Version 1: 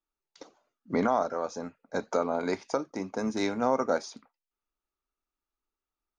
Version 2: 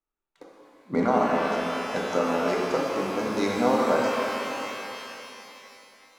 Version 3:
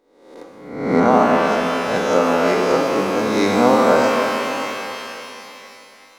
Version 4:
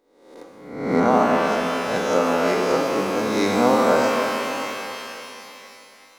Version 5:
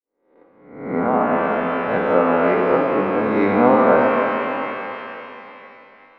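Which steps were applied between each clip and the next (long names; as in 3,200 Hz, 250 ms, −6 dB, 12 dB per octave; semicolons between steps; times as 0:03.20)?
adaptive Wiener filter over 9 samples; reverb with rising layers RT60 3.2 s, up +12 semitones, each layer −8 dB, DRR −3 dB
peak hold with a rise ahead of every peak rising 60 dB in 0.82 s; level +6.5 dB
high-shelf EQ 6,700 Hz +4.5 dB; level −3.5 dB
fade in at the beginning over 1.97 s; low-pass filter 2,300 Hz 24 dB per octave; level +3.5 dB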